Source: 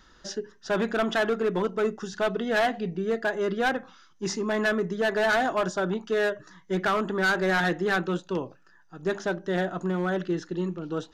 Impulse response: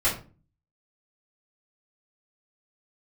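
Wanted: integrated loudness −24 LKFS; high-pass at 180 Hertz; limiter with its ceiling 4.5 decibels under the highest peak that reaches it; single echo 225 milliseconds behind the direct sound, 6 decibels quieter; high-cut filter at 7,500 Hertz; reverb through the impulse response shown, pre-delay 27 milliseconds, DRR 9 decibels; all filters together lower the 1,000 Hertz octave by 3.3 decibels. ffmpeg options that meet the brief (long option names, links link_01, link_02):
-filter_complex "[0:a]highpass=180,lowpass=7500,equalizer=frequency=1000:width_type=o:gain=-5,alimiter=limit=-20.5dB:level=0:latency=1,aecho=1:1:225:0.501,asplit=2[link_01][link_02];[1:a]atrim=start_sample=2205,adelay=27[link_03];[link_02][link_03]afir=irnorm=-1:irlink=0,volume=-21.5dB[link_04];[link_01][link_04]amix=inputs=2:normalize=0,volume=5dB"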